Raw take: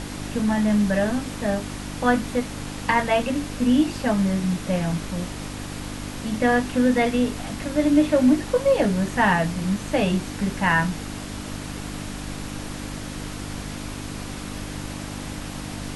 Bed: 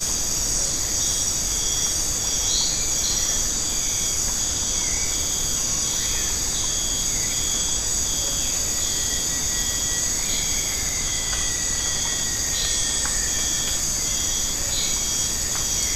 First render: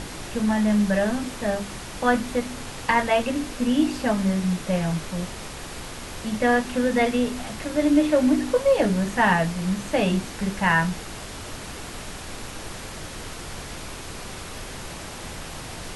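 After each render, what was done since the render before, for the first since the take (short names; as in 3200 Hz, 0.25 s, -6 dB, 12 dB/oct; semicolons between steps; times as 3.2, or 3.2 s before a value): de-hum 50 Hz, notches 6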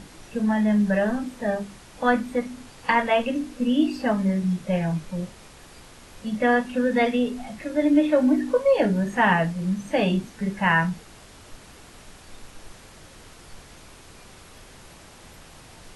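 noise print and reduce 11 dB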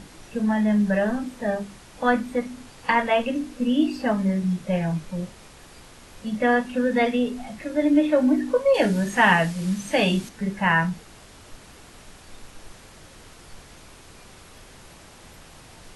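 8.74–10.29 high shelf 2100 Hz +9.5 dB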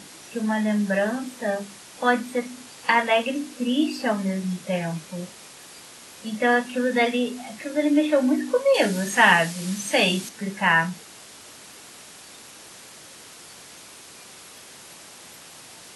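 Bessel high-pass 210 Hz, order 2; high shelf 2900 Hz +8.5 dB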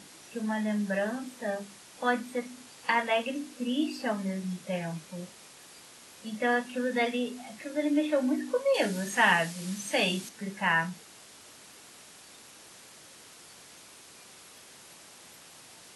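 gain -7 dB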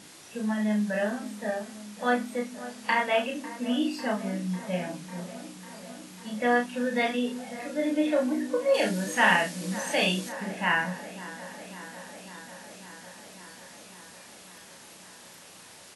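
doubler 33 ms -3.5 dB; dark delay 0.548 s, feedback 76%, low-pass 2000 Hz, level -15.5 dB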